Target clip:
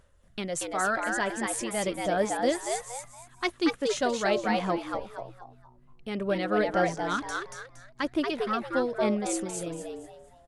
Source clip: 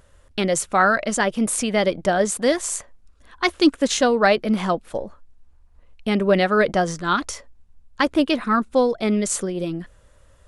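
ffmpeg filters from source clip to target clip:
-filter_complex "[0:a]tremolo=f=3.2:d=0.37,asplit=2[s0][s1];[s1]asplit=4[s2][s3][s4][s5];[s2]adelay=233,afreqshift=120,volume=0.668[s6];[s3]adelay=466,afreqshift=240,volume=0.207[s7];[s4]adelay=699,afreqshift=360,volume=0.0646[s8];[s5]adelay=932,afreqshift=480,volume=0.02[s9];[s6][s7][s8][s9]amix=inputs=4:normalize=0[s10];[s0][s10]amix=inputs=2:normalize=0,aphaser=in_gain=1:out_gain=1:delay=3.1:decay=0.25:speed=0.44:type=sinusoidal,volume=0.355"

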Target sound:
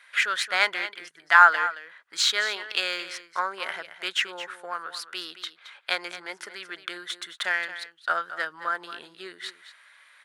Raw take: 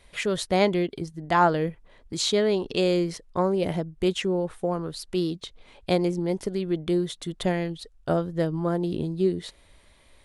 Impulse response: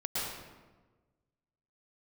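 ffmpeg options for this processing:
-filter_complex "[0:a]highpass=f=1500:t=q:w=4.1,asplit=2[s0][s1];[s1]adynamicsmooth=sensitivity=6.5:basefreq=4200,volume=0.75[s2];[s0][s2]amix=inputs=2:normalize=0,aecho=1:1:221:0.224,volume=0.891"

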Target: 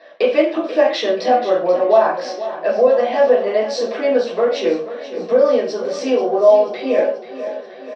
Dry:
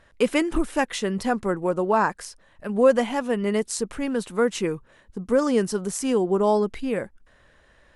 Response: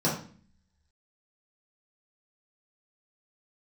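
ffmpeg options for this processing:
-filter_complex "[0:a]acompressor=threshold=0.0398:ratio=6,highpass=f=420:w=0.5412,highpass=f=420:w=1.3066,equalizer=f=430:t=q:w=4:g=-7,equalizer=f=640:t=q:w=4:g=9,equalizer=f=930:t=q:w=4:g=-9,equalizer=f=1400:t=q:w=4:g=-7,equalizer=f=2200:t=q:w=4:g=3,equalizer=f=3500:t=q:w=4:g=7,lowpass=f=4400:w=0.5412,lowpass=f=4400:w=1.3066,aecho=1:1:484|968|1452|1936|2420|2904:0.224|0.13|0.0753|0.0437|0.0253|0.0147[s0];[1:a]atrim=start_sample=2205,afade=t=out:st=0.21:d=0.01,atrim=end_sample=9702[s1];[s0][s1]afir=irnorm=-1:irlink=0,volume=1.68"

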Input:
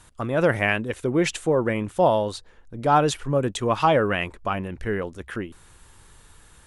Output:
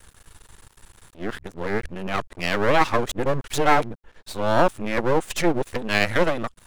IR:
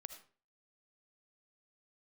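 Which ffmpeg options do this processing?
-af "areverse,aeval=exprs='max(val(0),0)':c=same,volume=1.68"

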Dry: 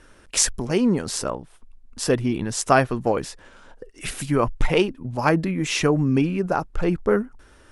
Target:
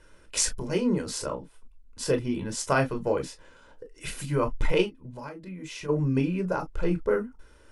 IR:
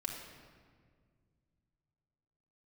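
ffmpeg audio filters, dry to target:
-filter_complex "[0:a]asplit=3[s0][s1][s2];[s0]afade=t=out:st=4.85:d=0.02[s3];[s1]acompressor=threshold=0.0282:ratio=10,afade=t=in:st=4.85:d=0.02,afade=t=out:st=5.88:d=0.02[s4];[s2]afade=t=in:st=5.88:d=0.02[s5];[s3][s4][s5]amix=inputs=3:normalize=0[s6];[1:a]atrim=start_sample=2205,atrim=end_sample=3528,asetrate=79380,aresample=44100[s7];[s6][s7]afir=irnorm=-1:irlink=0"

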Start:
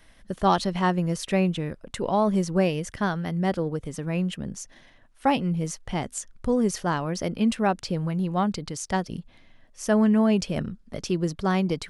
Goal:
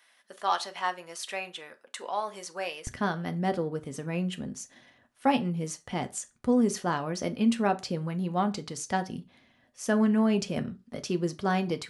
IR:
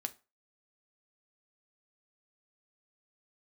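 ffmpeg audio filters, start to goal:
-filter_complex "[0:a]asetnsamples=n=441:p=0,asendcmd='2.87 highpass f 110',highpass=840[s0];[1:a]atrim=start_sample=2205,afade=t=out:st=0.22:d=0.01,atrim=end_sample=10143[s1];[s0][s1]afir=irnorm=-1:irlink=0,volume=0.841"

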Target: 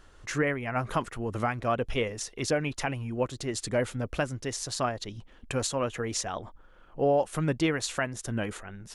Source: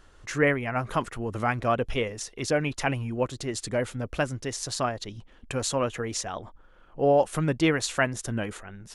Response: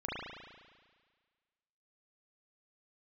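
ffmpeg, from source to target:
-af "alimiter=limit=0.158:level=0:latency=1:release=457"

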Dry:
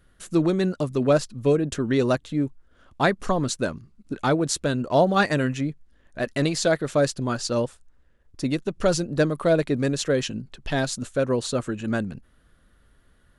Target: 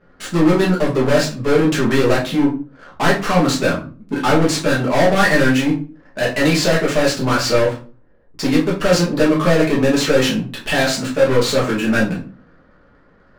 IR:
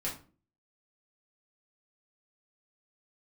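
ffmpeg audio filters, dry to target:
-filter_complex "[0:a]asplit=2[s0][s1];[s1]highpass=f=720:p=1,volume=22.4,asoftclip=type=tanh:threshold=0.447[s2];[s0][s2]amix=inputs=2:normalize=0,lowpass=f=5300:p=1,volume=0.501,adynamicsmooth=sensitivity=7:basefreq=560[s3];[1:a]atrim=start_sample=2205[s4];[s3][s4]afir=irnorm=-1:irlink=0,volume=0.668"

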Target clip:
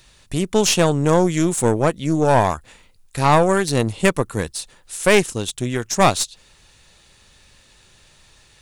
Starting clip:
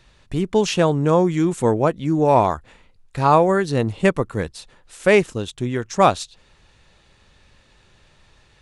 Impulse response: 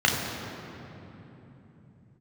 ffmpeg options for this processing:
-af "aemphasis=mode=production:type=75fm,aeval=exprs='(tanh(2.82*val(0)+0.6)-tanh(0.6))/2.82':c=same,volume=1.5"

